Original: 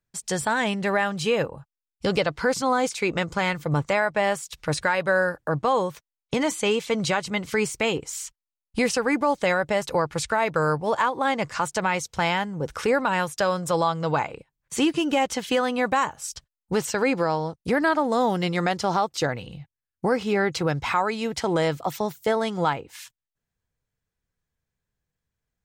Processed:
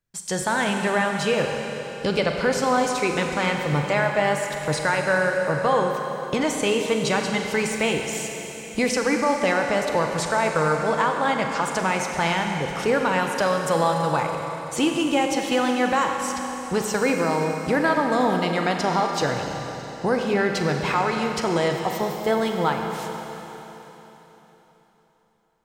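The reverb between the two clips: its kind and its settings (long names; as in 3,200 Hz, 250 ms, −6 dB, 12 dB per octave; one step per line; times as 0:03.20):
four-comb reverb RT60 3.8 s, combs from 32 ms, DRR 2.5 dB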